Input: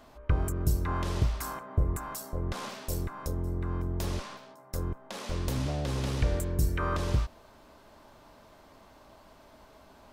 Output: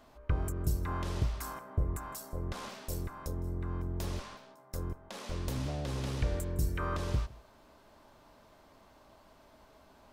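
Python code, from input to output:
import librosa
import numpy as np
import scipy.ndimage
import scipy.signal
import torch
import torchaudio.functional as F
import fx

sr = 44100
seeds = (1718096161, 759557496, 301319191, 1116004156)

y = x + 10.0 ** (-22.0 / 20.0) * np.pad(x, (int(160 * sr / 1000.0), 0))[:len(x)]
y = y * 10.0 ** (-4.5 / 20.0)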